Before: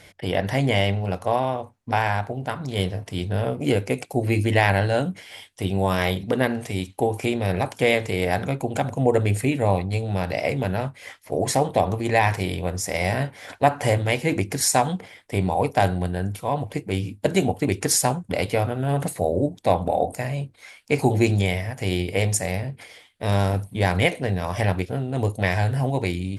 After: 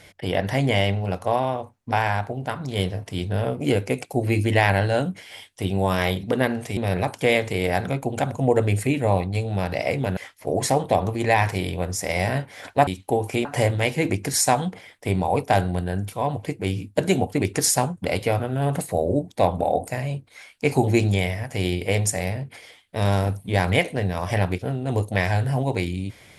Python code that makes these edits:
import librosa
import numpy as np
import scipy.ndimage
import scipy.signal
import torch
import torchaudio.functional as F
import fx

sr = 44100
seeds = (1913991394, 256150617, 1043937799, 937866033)

y = fx.edit(x, sr, fx.move(start_s=6.77, length_s=0.58, to_s=13.72),
    fx.cut(start_s=10.75, length_s=0.27), tone=tone)